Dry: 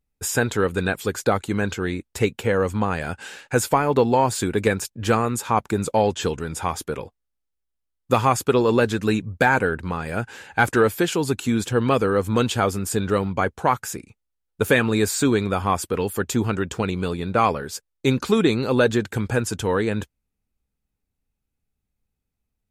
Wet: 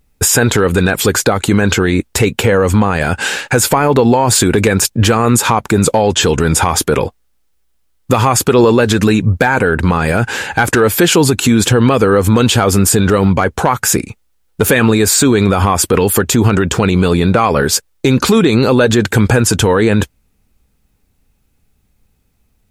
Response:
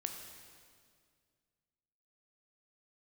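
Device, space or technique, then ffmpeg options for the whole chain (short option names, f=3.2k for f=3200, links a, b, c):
loud club master: -af "acompressor=threshold=-21dB:ratio=3,asoftclip=type=hard:threshold=-13dB,alimiter=level_in=21.5dB:limit=-1dB:release=50:level=0:latency=1,volume=-1dB"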